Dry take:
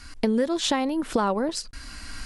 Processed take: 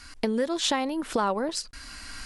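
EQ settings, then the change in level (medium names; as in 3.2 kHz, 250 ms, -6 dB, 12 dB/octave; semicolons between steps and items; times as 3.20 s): bass shelf 370 Hz -6.5 dB; 0.0 dB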